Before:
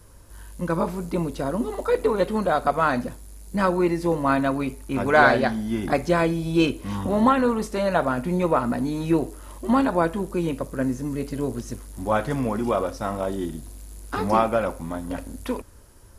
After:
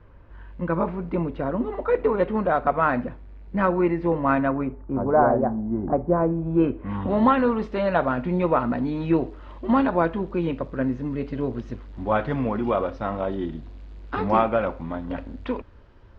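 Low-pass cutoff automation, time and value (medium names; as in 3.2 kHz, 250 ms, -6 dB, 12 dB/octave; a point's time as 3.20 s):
low-pass 24 dB/octave
4.38 s 2.6 kHz
5.05 s 1 kHz
6.07 s 1 kHz
6.83 s 1.9 kHz
7.11 s 3.4 kHz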